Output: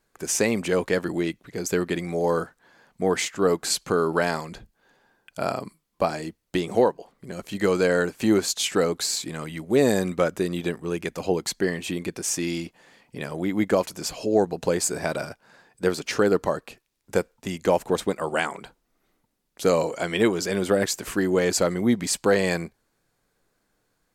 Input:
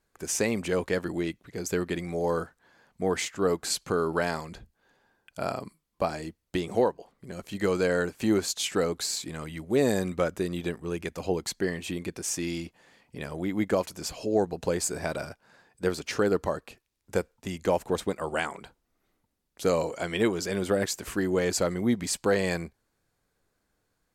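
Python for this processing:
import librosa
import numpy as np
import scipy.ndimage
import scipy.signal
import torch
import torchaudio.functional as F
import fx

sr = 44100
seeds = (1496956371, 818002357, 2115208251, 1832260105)

y = fx.peak_eq(x, sr, hz=71.0, db=-14.0, octaves=0.54)
y = y * 10.0 ** (4.5 / 20.0)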